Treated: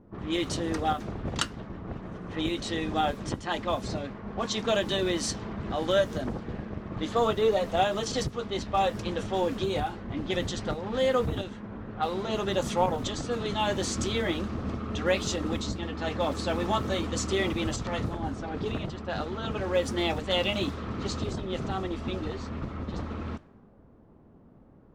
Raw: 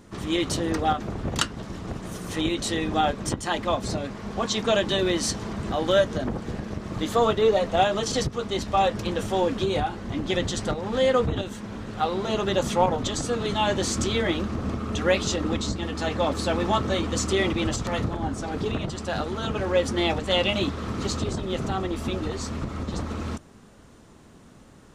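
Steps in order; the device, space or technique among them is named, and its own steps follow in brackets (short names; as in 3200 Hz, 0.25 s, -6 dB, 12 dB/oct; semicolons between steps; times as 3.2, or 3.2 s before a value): cassette deck with a dynamic noise filter (white noise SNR 31 dB; low-pass opened by the level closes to 690 Hz, open at -20.5 dBFS); gain -4 dB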